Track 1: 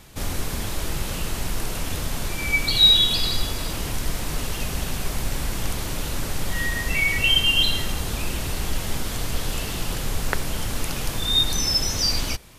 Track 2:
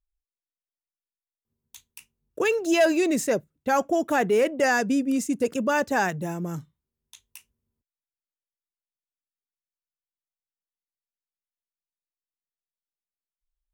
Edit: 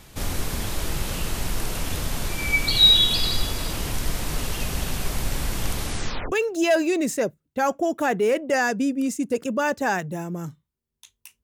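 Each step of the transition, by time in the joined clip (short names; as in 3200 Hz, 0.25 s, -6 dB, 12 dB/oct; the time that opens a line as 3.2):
track 1
5.81 tape stop 0.51 s
6.32 switch to track 2 from 2.42 s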